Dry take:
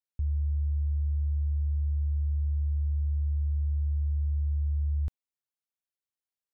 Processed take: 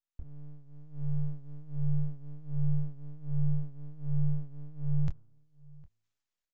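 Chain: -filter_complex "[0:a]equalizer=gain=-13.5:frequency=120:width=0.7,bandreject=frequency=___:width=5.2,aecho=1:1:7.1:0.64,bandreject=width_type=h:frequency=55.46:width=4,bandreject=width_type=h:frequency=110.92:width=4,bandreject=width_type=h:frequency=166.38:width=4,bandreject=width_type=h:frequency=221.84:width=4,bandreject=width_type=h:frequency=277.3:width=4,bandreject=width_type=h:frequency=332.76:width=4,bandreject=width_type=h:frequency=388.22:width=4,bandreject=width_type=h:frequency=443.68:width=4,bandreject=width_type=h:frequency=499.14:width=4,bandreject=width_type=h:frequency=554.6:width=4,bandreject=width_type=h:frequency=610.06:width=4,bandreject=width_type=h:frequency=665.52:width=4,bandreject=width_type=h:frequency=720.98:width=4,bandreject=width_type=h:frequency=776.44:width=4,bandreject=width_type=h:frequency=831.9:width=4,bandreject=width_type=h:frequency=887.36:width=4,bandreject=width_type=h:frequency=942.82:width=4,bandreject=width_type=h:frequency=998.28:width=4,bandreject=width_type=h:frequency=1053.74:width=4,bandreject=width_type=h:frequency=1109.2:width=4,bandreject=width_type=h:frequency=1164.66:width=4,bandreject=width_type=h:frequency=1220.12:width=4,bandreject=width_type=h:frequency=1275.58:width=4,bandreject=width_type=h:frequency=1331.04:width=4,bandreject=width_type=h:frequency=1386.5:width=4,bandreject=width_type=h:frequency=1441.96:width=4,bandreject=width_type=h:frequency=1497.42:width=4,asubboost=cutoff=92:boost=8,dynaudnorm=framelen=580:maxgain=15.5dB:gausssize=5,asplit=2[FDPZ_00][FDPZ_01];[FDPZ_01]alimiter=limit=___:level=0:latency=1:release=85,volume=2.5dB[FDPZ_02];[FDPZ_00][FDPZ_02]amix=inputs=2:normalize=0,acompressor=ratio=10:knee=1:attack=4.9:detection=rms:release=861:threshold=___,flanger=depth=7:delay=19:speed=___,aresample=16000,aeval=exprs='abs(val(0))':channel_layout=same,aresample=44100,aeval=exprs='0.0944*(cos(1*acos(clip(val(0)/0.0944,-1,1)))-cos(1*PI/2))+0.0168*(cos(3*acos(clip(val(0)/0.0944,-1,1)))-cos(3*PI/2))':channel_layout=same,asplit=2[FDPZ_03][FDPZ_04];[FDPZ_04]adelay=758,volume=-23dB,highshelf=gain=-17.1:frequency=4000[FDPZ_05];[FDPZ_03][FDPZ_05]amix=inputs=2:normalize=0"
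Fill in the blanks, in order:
190, -16dB, -22dB, 1.3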